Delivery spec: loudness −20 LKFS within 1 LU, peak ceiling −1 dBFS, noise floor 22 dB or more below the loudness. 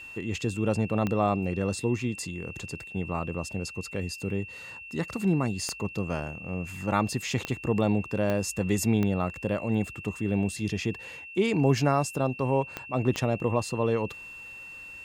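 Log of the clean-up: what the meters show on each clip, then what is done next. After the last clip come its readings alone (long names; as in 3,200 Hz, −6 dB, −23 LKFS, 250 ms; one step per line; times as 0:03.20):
number of clicks 7; interfering tone 2,700 Hz; level of the tone −41 dBFS; integrated loudness −29.0 LKFS; sample peak −11.0 dBFS; target loudness −20.0 LKFS
→ click removal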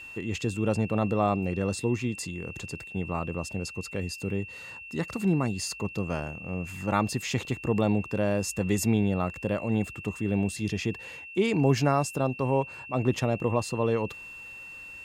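number of clicks 0; interfering tone 2,700 Hz; level of the tone −41 dBFS
→ notch filter 2,700 Hz, Q 30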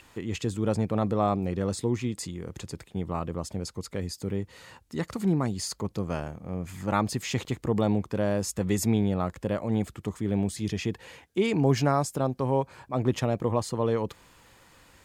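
interfering tone none found; integrated loudness −29.0 LKFS; sample peak −11.0 dBFS; target loudness −20.0 LKFS
→ level +9 dB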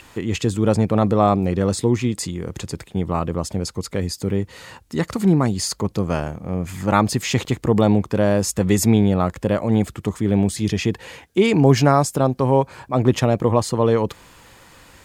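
integrated loudness −20.0 LKFS; sample peak −2.0 dBFS; background noise floor −50 dBFS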